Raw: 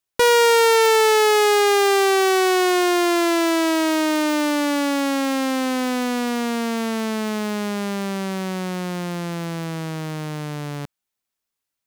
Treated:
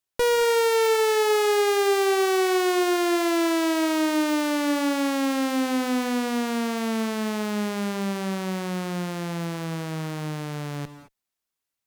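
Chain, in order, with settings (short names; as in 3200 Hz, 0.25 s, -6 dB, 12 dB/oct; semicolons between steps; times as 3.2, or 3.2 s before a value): tube stage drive 18 dB, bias 0.55; non-linear reverb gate 0.24 s rising, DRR 11.5 dB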